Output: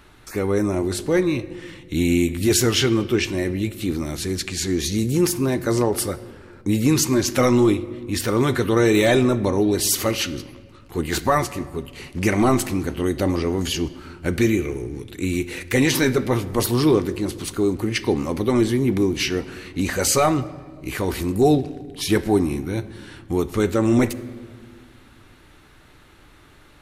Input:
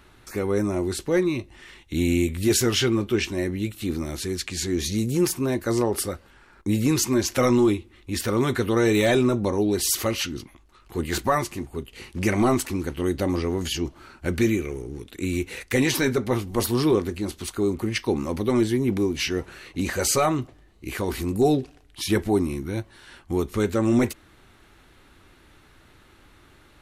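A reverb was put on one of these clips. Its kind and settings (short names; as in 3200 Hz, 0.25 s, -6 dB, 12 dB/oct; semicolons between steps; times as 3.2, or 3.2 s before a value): shoebox room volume 2200 m³, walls mixed, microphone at 0.41 m; gain +3 dB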